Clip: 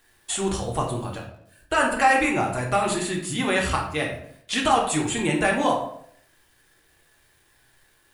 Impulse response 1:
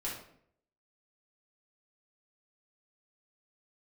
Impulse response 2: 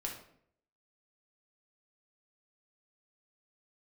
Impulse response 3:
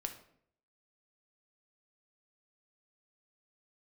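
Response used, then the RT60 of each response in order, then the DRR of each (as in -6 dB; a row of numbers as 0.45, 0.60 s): 2; 0.65, 0.65, 0.65 s; -6.5, -1.0, 5.0 dB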